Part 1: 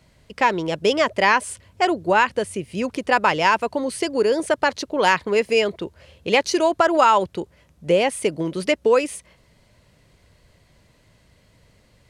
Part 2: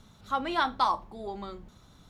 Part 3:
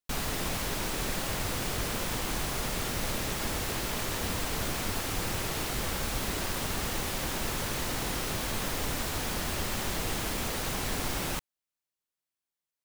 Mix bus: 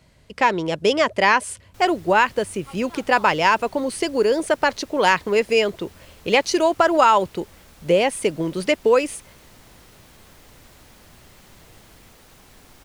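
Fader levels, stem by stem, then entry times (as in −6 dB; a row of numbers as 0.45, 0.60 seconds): +0.5, −15.0, −17.5 decibels; 0.00, 2.35, 1.65 seconds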